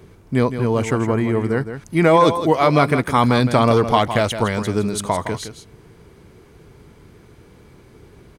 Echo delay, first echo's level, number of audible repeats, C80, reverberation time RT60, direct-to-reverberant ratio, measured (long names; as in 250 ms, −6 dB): 163 ms, −10.0 dB, 1, no reverb audible, no reverb audible, no reverb audible